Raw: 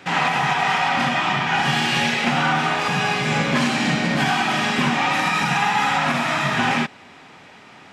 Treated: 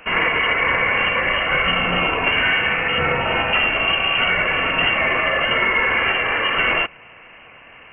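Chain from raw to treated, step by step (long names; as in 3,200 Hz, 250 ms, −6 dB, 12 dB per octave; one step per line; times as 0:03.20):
0:02.98–0:03.53: spectral tilt +2.5 dB per octave
voice inversion scrambler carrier 3,000 Hz
level +1.5 dB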